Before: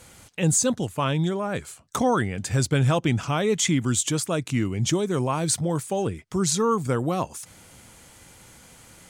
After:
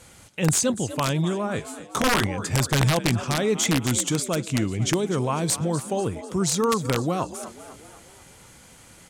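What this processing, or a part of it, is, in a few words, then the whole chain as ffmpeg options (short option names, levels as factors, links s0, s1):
overflowing digital effects unit: -filter_complex "[0:a]asettb=1/sr,asplit=3[s0][s1][s2];[s0]atrim=end=1.564[s3];[s1]atrim=start=1.56:end=2.27,asetpts=PTS-STARTPTS,afade=t=in:d=0.004:c=qsin,afade=t=out:st=0.706:d=0.004:c=qsin,asplit=2[s4][s5];[s5]adelay=19,volume=0.562[s6];[s4][s6]amix=inputs=2:normalize=0,atrim=end_sample=31311[s7];[s2]atrim=start=2.266[s8];[s3][s7]acrossfade=d=0.004:c1=hsin:c2=qsin[s9];[s9][s8]acrossfade=d=0.004:c1=qsin:c2=hsin,asplit=6[s10][s11][s12][s13][s14][s15];[s11]adelay=248,afreqshift=53,volume=0.2[s16];[s12]adelay=496,afreqshift=106,volume=0.102[s17];[s13]adelay=744,afreqshift=159,volume=0.0519[s18];[s14]adelay=992,afreqshift=212,volume=0.0266[s19];[s15]adelay=1240,afreqshift=265,volume=0.0135[s20];[s10][s16][s17][s18][s19][s20]amix=inputs=6:normalize=0,aeval=exprs='(mod(4.47*val(0)+1,2)-1)/4.47':c=same,lowpass=13000"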